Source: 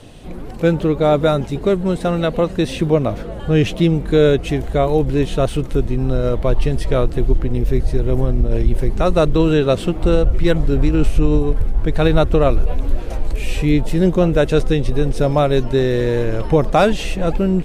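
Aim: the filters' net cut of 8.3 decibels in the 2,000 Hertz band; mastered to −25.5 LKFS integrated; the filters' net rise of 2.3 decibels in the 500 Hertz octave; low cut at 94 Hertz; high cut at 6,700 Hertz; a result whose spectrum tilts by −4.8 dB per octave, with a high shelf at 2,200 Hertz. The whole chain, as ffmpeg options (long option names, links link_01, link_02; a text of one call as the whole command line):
ffmpeg -i in.wav -af "highpass=94,lowpass=6700,equalizer=frequency=500:width_type=o:gain=3.5,equalizer=frequency=2000:width_type=o:gain=-8.5,highshelf=frequency=2200:gain=-6.5,volume=-8.5dB" out.wav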